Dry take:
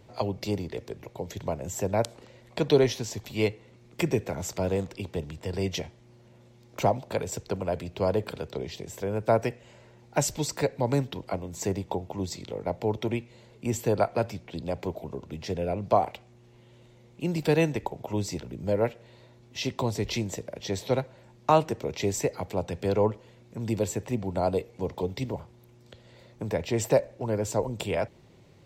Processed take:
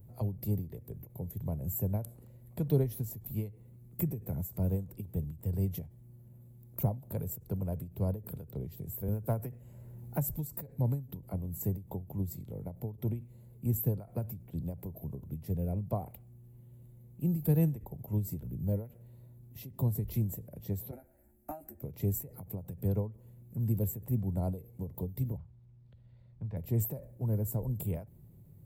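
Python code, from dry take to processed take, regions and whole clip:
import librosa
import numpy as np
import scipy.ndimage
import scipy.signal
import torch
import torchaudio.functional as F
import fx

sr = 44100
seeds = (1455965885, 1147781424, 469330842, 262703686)

y = fx.chain(x, sr, fx.dynamic_eq(hz=1300.0, q=0.77, threshold_db=-37.0, ratio=4.0, max_db=4),
    fx.clip_hard(threshold_db=-11.0),
    fx.band_squash(depth_pct=40), at=(9.08, 10.35))
y = fx.chain(y, sr, fx.peak_eq(hz=150.0, db=-13.0, octaves=0.91),
    fx.fixed_phaser(hz=690.0, stages=8),
    fx.doubler(ms=14.0, db=-4.5), at=(20.91, 21.82))
y = fx.chain(y, sr, fx.lowpass(hz=4300.0, slope=24),
    fx.peak_eq(hz=330.0, db=-11.5, octaves=2.2), at=(25.37, 26.57))
y = fx.curve_eq(y, sr, hz=(150.0, 320.0, 3000.0, 5900.0, 13000.0), db=(0, -13, -28, -26, 11))
y = fx.end_taper(y, sr, db_per_s=150.0)
y = y * librosa.db_to_amplitude(3.5)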